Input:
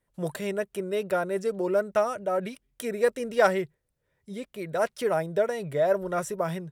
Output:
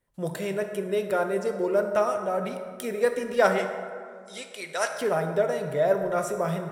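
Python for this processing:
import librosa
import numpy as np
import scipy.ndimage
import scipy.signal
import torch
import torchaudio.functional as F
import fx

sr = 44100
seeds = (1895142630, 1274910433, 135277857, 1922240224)

y = fx.weighting(x, sr, curve='ITU-R 468', at=(3.57, 4.87), fade=0.02)
y = fx.rev_plate(y, sr, seeds[0], rt60_s=2.1, hf_ratio=0.45, predelay_ms=0, drr_db=5.0)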